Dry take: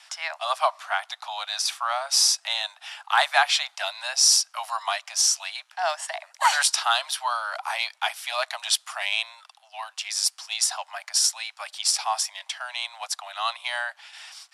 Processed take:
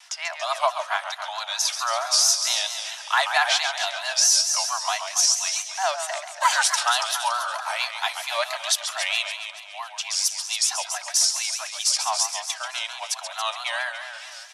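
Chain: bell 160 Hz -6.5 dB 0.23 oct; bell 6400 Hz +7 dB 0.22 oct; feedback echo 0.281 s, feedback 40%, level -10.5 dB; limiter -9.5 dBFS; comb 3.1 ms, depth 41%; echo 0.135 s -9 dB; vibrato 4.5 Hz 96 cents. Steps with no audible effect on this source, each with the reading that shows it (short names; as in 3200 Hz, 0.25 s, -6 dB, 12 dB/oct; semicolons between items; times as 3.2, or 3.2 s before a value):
bell 160 Hz: input band starts at 510 Hz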